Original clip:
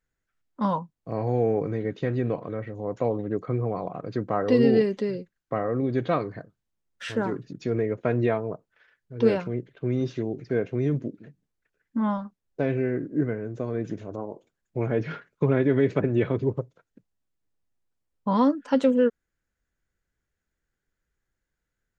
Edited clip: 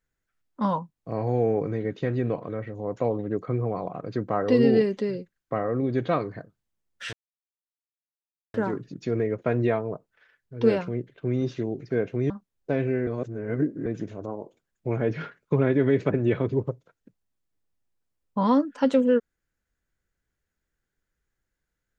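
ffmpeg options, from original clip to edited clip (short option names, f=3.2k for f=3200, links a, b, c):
-filter_complex "[0:a]asplit=5[a][b][c][d][e];[a]atrim=end=7.13,asetpts=PTS-STARTPTS,afade=t=out:st=7.126:d=0.004:c=hsin,apad=pad_dur=1.41[f];[b]atrim=start=7.13:end=10.892,asetpts=PTS-STARTPTS,afade=t=in:d=0.004:c=hsin[g];[c]atrim=start=12.198:end=12.972[h];[d]atrim=start=12.968:end=13.762,asetpts=PTS-STARTPTS,areverse[i];[e]atrim=start=13.758[j];[f][g]concat=n=2:v=0:a=1[k];[k][h]acrossfade=d=0.004:c1=hsin:c2=hsin[l];[l][i]acrossfade=d=0.004:c1=hsin:c2=hsin[m];[m][j]acrossfade=d=0.004:c1=hsin:c2=hsin"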